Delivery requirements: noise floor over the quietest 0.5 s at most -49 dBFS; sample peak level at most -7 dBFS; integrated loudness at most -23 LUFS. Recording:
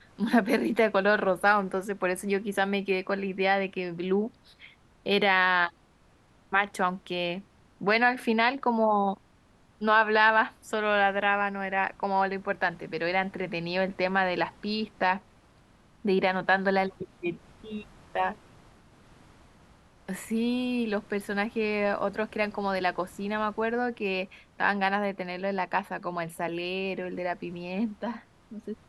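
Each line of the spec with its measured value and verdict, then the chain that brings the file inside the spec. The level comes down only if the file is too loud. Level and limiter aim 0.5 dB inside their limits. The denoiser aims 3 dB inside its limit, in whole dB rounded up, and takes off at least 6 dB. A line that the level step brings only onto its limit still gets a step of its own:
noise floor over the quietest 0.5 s -61 dBFS: OK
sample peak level -8.0 dBFS: OK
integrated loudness -27.5 LUFS: OK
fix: none

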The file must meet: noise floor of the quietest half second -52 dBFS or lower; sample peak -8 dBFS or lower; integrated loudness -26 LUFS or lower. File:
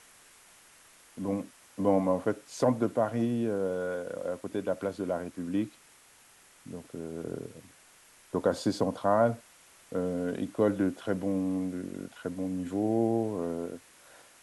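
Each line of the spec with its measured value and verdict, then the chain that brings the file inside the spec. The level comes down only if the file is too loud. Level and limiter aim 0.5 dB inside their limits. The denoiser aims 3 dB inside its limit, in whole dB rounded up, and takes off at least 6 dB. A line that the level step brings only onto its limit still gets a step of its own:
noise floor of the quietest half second -59 dBFS: OK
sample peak -12.5 dBFS: OK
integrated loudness -31.0 LUFS: OK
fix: none

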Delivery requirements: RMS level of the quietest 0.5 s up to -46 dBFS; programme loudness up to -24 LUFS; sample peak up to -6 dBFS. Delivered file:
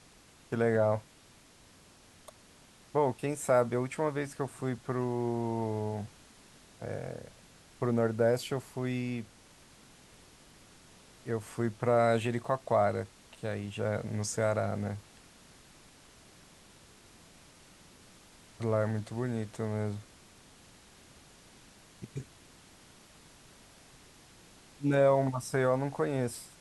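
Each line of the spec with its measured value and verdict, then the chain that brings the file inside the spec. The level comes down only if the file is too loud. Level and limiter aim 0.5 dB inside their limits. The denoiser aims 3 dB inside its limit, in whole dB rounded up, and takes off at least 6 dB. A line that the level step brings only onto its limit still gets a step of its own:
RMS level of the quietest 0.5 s -59 dBFS: OK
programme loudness -31.5 LUFS: OK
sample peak -13.5 dBFS: OK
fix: none

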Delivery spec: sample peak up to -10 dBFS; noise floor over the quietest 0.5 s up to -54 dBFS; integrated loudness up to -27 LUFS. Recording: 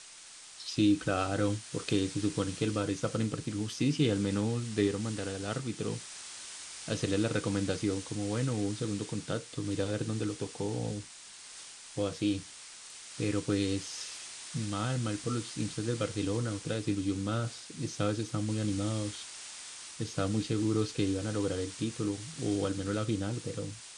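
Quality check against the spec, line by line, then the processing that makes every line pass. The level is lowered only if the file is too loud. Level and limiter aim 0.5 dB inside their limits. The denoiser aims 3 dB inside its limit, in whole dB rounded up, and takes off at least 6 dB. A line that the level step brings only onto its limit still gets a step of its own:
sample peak -15.5 dBFS: OK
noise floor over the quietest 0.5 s -51 dBFS: fail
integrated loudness -33.5 LUFS: OK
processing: denoiser 6 dB, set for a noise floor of -51 dBFS

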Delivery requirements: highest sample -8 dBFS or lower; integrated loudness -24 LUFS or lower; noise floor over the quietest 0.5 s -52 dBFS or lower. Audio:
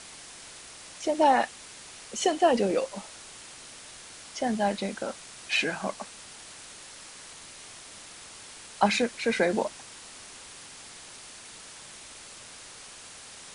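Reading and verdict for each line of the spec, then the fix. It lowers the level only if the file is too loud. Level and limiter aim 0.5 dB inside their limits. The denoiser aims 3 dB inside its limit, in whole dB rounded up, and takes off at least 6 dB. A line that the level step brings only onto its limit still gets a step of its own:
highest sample -7.5 dBFS: fail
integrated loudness -27.5 LUFS: OK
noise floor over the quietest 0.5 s -46 dBFS: fail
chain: denoiser 9 dB, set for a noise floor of -46 dBFS; limiter -8.5 dBFS

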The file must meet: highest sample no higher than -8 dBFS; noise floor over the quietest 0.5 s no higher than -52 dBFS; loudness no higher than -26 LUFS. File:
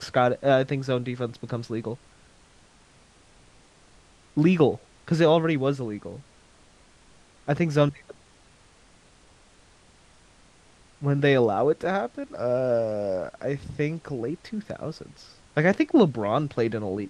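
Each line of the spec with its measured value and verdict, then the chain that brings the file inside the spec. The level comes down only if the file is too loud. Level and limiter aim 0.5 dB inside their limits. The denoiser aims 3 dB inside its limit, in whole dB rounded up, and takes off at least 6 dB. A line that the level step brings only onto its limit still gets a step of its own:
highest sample -6.5 dBFS: fail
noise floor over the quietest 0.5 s -56 dBFS: OK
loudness -25.0 LUFS: fail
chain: gain -1.5 dB; limiter -8.5 dBFS

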